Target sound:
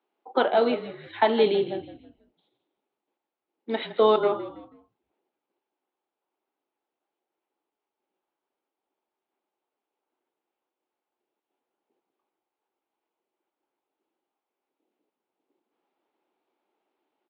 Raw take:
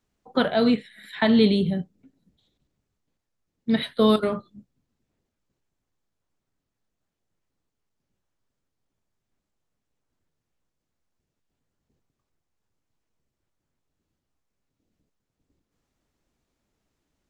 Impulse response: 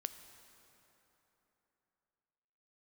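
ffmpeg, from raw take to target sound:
-filter_complex "[0:a]highpass=frequency=320:width=0.5412,highpass=frequency=320:width=1.3066,equalizer=frequency=360:width_type=q:width=4:gain=6,equalizer=frequency=840:width_type=q:width=4:gain=9,equalizer=frequency=1800:width_type=q:width=4:gain=-5,lowpass=frequency=3300:width=0.5412,lowpass=frequency=3300:width=1.3066,asplit=2[link_01][link_02];[link_02]asplit=3[link_03][link_04][link_05];[link_03]adelay=162,afreqshift=-47,volume=-13.5dB[link_06];[link_04]adelay=324,afreqshift=-94,volume=-22.6dB[link_07];[link_05]adelay=486,afreqshift=-141,volume=-31.7dB[link_08];[link_06][link_07][link_08]amix=inputs=3:normalize=0[link_09];[link_01][link_09]amix=inputs=2:normalize=0"

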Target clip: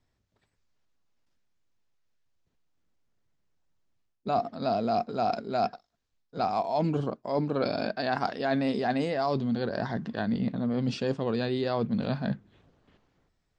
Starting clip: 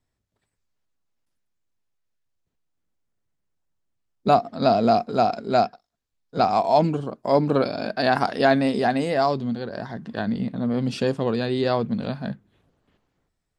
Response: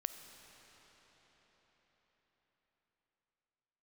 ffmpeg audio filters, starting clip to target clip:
-af "lowpass=frequency=6900:width=0.5412,lowpass=frequency=6900:width=1.3066,areverse,acompressor=threshold=-28dB:ratio=6,areverse,volume=3dB"

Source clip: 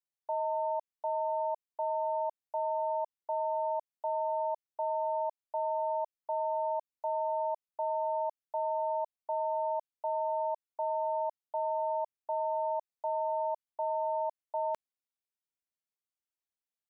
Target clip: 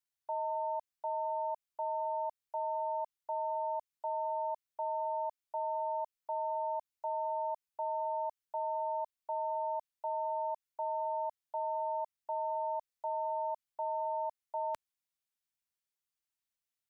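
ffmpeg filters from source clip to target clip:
ffmpeg -i in.wav -af "equalizer=frequency=430:width=0.56:gain=-8.5,volume=2.5dB" out.wav

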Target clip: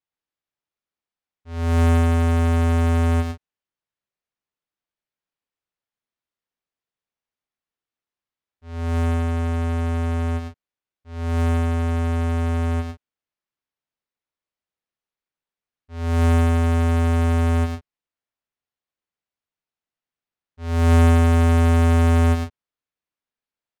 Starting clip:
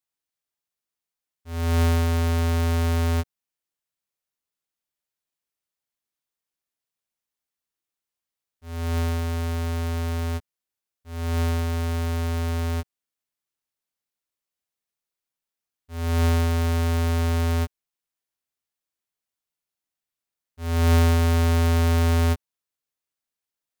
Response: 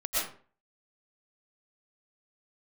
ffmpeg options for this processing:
-af "adynamicsmooth=sensitivity=2:basefreq=4100,aecho=1:1:107.9|139.9:0.631|0.251"

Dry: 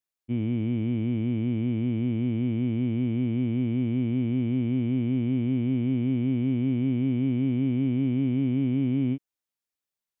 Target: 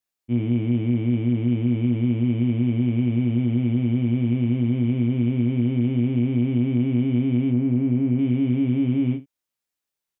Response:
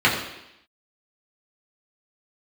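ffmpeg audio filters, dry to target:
-filter_complex "[0:a]asettb=1/sr,asplit=3[link_01][link_02][link_03];[link_01]atrim=end=7.504[link_04];[link_02]atrim=start=7.5:end=8.19,asetpts=PTS-STARTPTS,afade=type=in:duration=0.004:curve=qsin,afade=type=out:start_time=0.686:duration=0.004:curve=qsin,lowpass=1800[link_05];[link_03]atrim=start=8.186[link_06];[link_04][link_05]acrossfade=duration=0.004:curve1=hsin:curve2=qsin[link_07];[link_07][link_06]acrossfade=duration=0.004:curve1=qsin:curve2=hsin,aecho=1:1:25|78:0.631|0.133,volume=2.5dB"

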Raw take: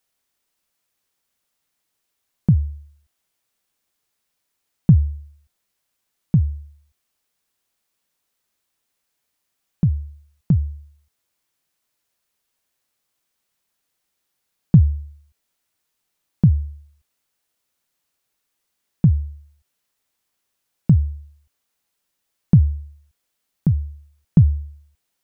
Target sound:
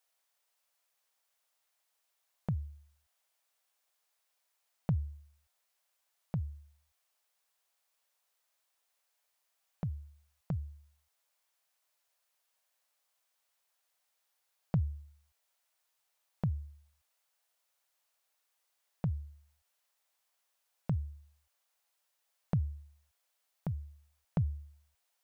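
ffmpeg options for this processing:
ffmpeg -i in.wav -af "lowshelf=frequency=420:width_type=q:width=1.5:gain=-13.5,volume=-4dB" out.wav

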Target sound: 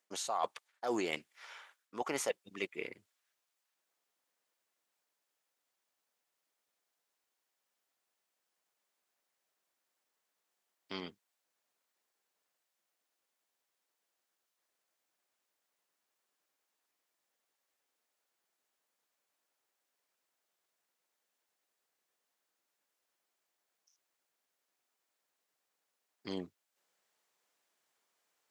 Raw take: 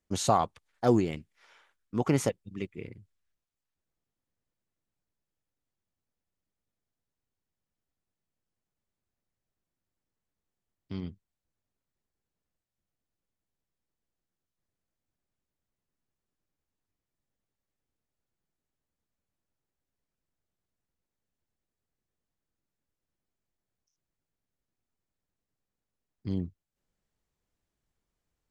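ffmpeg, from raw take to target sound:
ffmpeg -i in.wav -af "highpass=620,areverse,acompressor=threshold=-40dB:ratio=12,areverse,volume=8.5dB" out.wav

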